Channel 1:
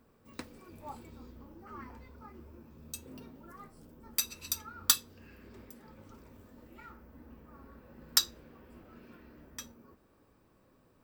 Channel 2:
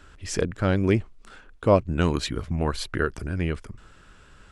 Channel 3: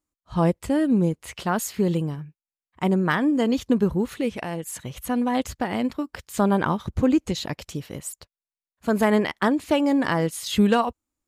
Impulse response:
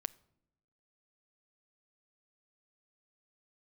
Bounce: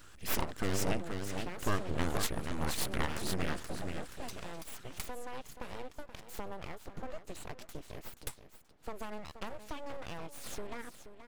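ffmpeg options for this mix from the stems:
-filter_complex "[0:a]lowpass=6700,adelay=100,volume=-12dB[link_01];[1:a]acompressor=threshold=-26dB:ratio=2,aemphasis=mode=production:type=50fm,volume=-4dB,asplit=2[link_02][link_03];[link_03]volume=-5.5dB[link_04];[2:a]acompressor=threshold=-29dB:ratio=5,volume=-8.5dB,asplit=2[link_05][link_06];[link_06]volume=-11.5dB[link_07];[link_04][link_07]amix=inputs=2:normalize=0,aecho=0:1:478|956|1434|1912:1|0.24|0.0576|0.0138[link_08];[link_01][link_02][link_05][link_08]amix=inputs=4:normalize=0,aeval=exprs='abs(val(0))':channel_layout=same"

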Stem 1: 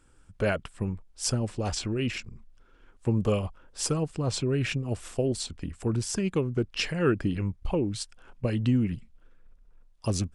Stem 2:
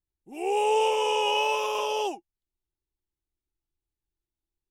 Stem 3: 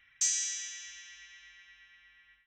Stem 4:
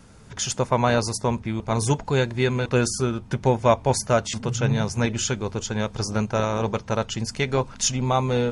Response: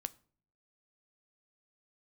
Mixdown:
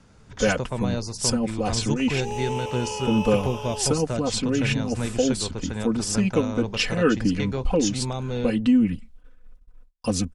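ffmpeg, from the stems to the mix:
-filter_complex "[0:a]agate=range=-30dB:threshold=-53dB:ratio=16:detection=peak,aecho=1:1:4:0.97,volume=2.5dB,asplit=2[link_01][link_02];[1:a]adelay=1750,volume=-7dB[link_03];[2:a]alimiter=level_in=6.5dB:limit=-24dB:level=0:latency=1,volume=-6.5dB,adelay=1750,volume=-5.5dB[link_04];[3:a]lowpass=7000,acrossover=split=470|3000[link_05][link_06][link_07];[link_06]acompressor=threshold=-31dB:ratio=6[link_08];[link_05][link_08][link_07]amix=inputs=3:normalize=0,volume=-4.5dB[link_09];[link_02]apad=whole_len=185999[link_10];[link_04][link_10]sidechaincompress=threshold=-28dB:ratio=8:attack=16:release=390[link_11];[link_01][link_03][link_11][link_09]amix=inputs=4:normalize=0"

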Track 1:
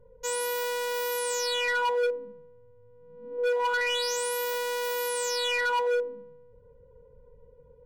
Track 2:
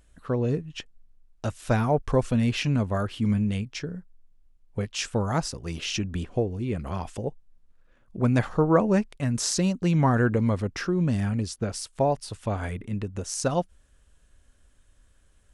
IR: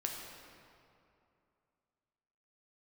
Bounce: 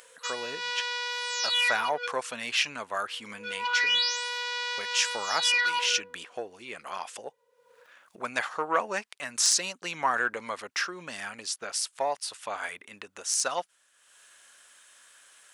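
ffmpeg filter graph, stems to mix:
-filter_complex "[0:a]lowpass=frequency=4900:width=0.5412,lowpass=frequency=4900:width=1.3066,highshelf=frequency=2000:gain=10,volume=-0.5dB[link_01];[1:a]acontrast=72,volume=-1.5dB,asplit=2[link_02][link_03];[link_03]apad=whole_len=346577[link_04];[link_01][link_04]sidechaincompress=threshold=-25dB:ratio=3:attack=35:release=138[link_05];[link_05][link_02]amix=inputs=2:normalize=0,highpass=1100,acompressor=mode=upward:threshold=-45dB:ratio=2.5"

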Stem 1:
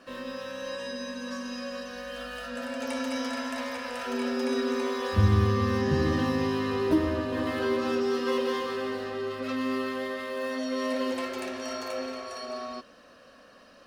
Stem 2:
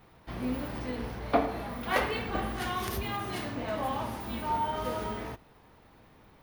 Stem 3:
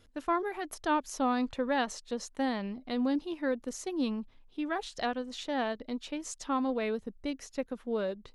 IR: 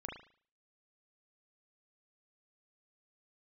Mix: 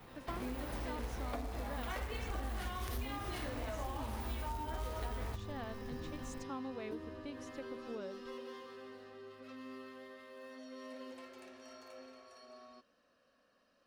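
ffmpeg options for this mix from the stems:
-filter_complex "[0:a]volume=-19.5dB[link_01];[1:a]asubboost=boost=9.5:cutoff=57,acrossover=split=85|260[link_02][link_03][link_04];[link_02]acompressor=threshold=-32dB:ratio=4[link_05];[link_03]acompressor=threshold=-48dB:ratio=4[link_06];[link_04]acompressor=threshold=-37dB:ratio=4[link_07];[link_05][link_06][link_07]amix=inputs=3:normalize=0,acrusher=bits=4:mode=log:mix=0:aa=0.000001,volume=2dB[link_08];[2:a]volume=-11.5dB[link_09];[link_01][link_08][link_09]amix=inputs=3:normalize=0,acompressor=threshold=-39dB:ratio=3"

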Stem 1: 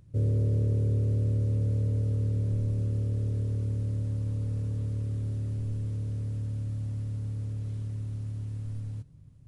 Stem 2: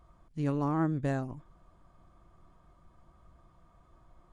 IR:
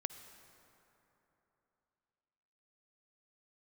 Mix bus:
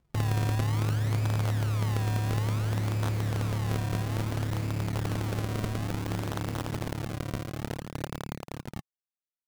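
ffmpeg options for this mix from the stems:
-filter_complex "[0:a]acompressor=mode=upward:threshold=-36dB:ratio=2.5,acrusher=bits=4:mix=0:aa=0.000001,asoftclip=type=tanh:threshold=-32.5dB,volume=0dB[link_01];[1:a]volume=28.5dB,asoftclip=hard,volume=-28.5dB,volume=-14.5dB[link_02];[link_01][link_02]amix=inputs=2:normalize=0,equalizer=frequency=150:width=0.92:gain=11,crystalizer=i=3.5:c=0,acrusher=samples=35:mix=1:aa=0.000001:lfo=1:lforange=35:lforate=0.58"

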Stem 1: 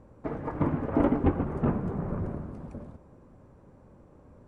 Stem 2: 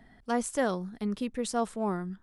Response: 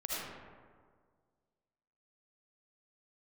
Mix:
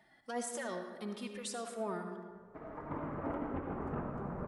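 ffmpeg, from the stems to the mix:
-filter_complex "[0:a]equalizer=frequency=1300:width_type=o:width=2.3:gain=8.5,adelay=2300,volume=-14.5dB,asplit=2[link_01][link_02];[link_02]volume=-5.5dB[link_03];[1:a]highpass=frequency=630:poles=1,alimiter=level_in=4dB:limit=-24dB:level=0:latency=1:release=19,volume=-4dB,asplit=2[link_04][link_05];[link_05]adelay=2.9,afreqshift=-1.5[link_06];[link_04][link_06]amix=inputs=2:normalize=1,volume=-2dB,asplit=3[link_07][link_08][link_09];[link_08]volume=-6.5dB[link_10];[link_09]apad=whole_len=298960[link_11];[link_01][link_11]sidechaincompress=threshold=-59dB:ratio=8:attack=16:release=1040[link_12];[2:a]atrim=start_sample=2205[link_13];[link_03][link_10]amix=inputs=2:normalize=0[link_14];[link_14][link_13]afir=irnorm=-1:irlink=0[link_15];[link_12][link_07][link_15]amix=inputs=3:normalize=0,alimiter=level_in=3.5dB:limit=-24dB:level=0:latency=1:release=315,volume=-3.5dB"

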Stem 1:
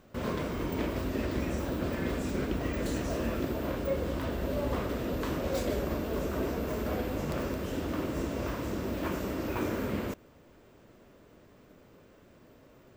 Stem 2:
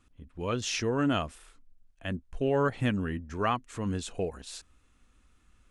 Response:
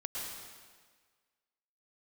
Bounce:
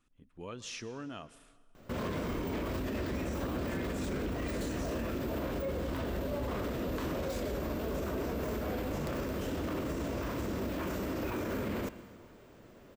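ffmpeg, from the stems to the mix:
-filter_complex "[0:a]adelay=1750,volume=0.5dB,asplit=2[link_01][link_02];[link_02]volume=-16dB[link_03];[1:a]acompressor=threshold=-31dB:ratio=6,equalizer=frequency=68:width_type=o:width=0.76:gain=-12,volume=-8.5dB,asplit=2[link_04][link_05];[link_05]volume=-16.5dB[link_06];[2:a]atrim=start_sample=2205[link_07];[link_03][link_06]amix=inputs=2:normalize=0[link_08];[link_08][link_07]afir=irnorm=-1:irlink=0[link_09];[link_01][link_04][link_09]amix=inputs=3:normalize=0,alimiter=level_in=3.5dB:limit=-24dB:level=0:latency=1:release=19,volume=-3.5dB"

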